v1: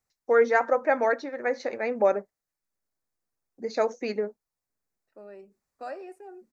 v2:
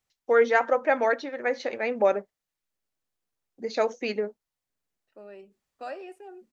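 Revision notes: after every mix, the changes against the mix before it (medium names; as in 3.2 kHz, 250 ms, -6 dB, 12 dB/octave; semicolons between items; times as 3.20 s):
master: add peaking EQ 3.1 kHz +13 dB 0.51 oct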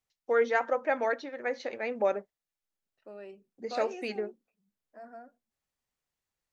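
first voice -5.5 dB; second voice: entry -2.10 s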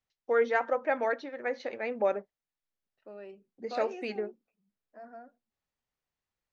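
master: add distance through air 88 m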